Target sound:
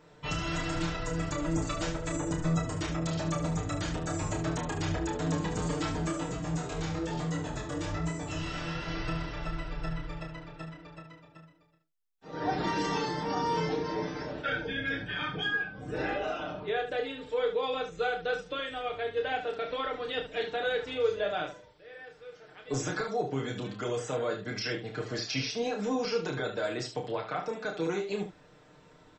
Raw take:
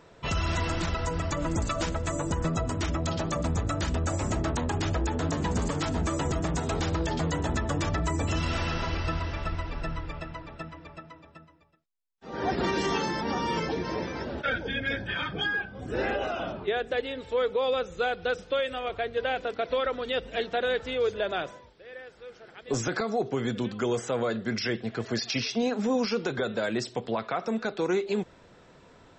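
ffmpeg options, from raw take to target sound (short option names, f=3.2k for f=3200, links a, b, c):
-filter_complex "[0:a]aecho=1:1:6.6:0.7,asplit=3[a][b][c];[a]afade=t=out:st=6.1:d=0.02[d];[b]flanger=delay=16.5:depth=7.4:speed=1.1,afade=t=in:st=6.1:d=0.02,afade=t=out:st=8.86:d=0.02[e];[c]afade=t=in:st=8.86:d=0.02[f];[d][e][f]amix=inputs=3:normalize=0,aecho=1:1:30|73:0.562|0.355,volume=-6dB"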